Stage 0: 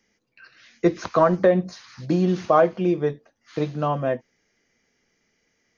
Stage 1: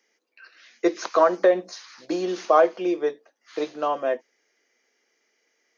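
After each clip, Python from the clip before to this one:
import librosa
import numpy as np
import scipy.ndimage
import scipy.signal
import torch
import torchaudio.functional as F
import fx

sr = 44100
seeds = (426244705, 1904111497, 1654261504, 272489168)

y = scipy.signal.sosfilt(scipy.signal.butter(4, 330.0, 'highpass', fs=sr, output='sos'), x)
y = fx.dynamic_eq(y, sr, hz=6100.0, q=0.96, threshold_db=-49.0, ratio=4.0, max_db=5)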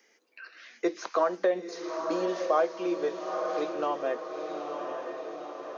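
y = fx.echo_diffused(x, sr, ms=915, feedback_pct=50, wet_db=-8)
y = fx.band_squash(y, sr, depth_pct=40)
y = y * librosa.db_to_amplitude(-6.0)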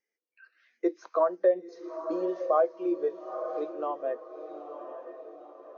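y = fx.spectral_expand(x, sr, expansion=1.5)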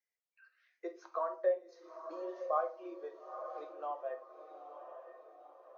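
y = scipy.signal.sosfilt(scipy.signal.cheby1(2, 1.0, 720.0, 'highpass', fs=sr, output='sos'), x)
y = fx.room_shoebox(y, sr, seeds[0], volume_m3=250.0, walls='furnished', distance_m=0.94)
y = y * librosa.db_to_amplitude(-7.0)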